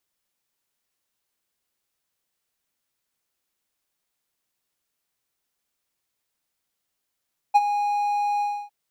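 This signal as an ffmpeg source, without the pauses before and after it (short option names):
-f lavfi -i "aevalsrc='0.398*(1-4*abs(mod(823*t+0.25,1)-0.5))':d=1.155:s=44100,afade=t=in:d=0.019,afade=t=out:st=0.019:d=0.037:silence=0.282,afade=t=out:st=0.87:d=0.285"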